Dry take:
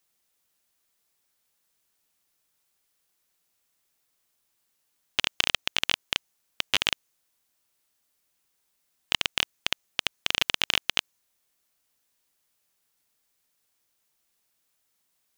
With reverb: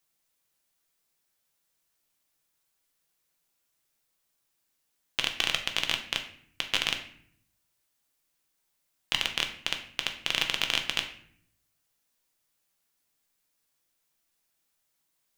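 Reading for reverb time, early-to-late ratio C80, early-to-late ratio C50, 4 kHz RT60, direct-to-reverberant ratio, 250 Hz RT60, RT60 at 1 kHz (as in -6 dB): 0.60 s, 13.0 dB, 9.5 dB, 0.45 s, 4.0 dB, 0.95 s, 0.55 s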